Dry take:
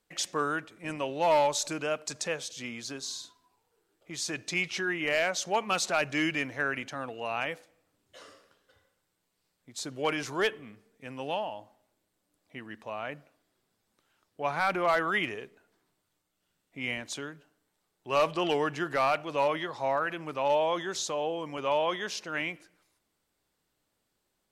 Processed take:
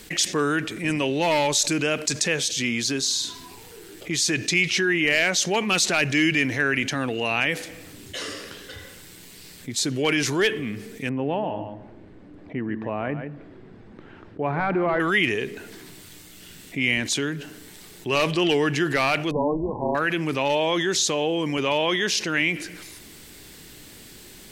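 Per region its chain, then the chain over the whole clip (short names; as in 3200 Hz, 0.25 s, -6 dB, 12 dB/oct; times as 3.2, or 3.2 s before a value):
11.09–15 LPF 1100 Hz + echo 0.142 s -12.5 dB
19.31–19.95 bell 480 Hz +6.5 dB 0.28 oct + AM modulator 300 Hz, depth 55% + brick-wall FIR low-pass 1100 Hz
whole clip: band shelf 850 Hz -9 dB; fast leveller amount 50%; gain +7.5 dB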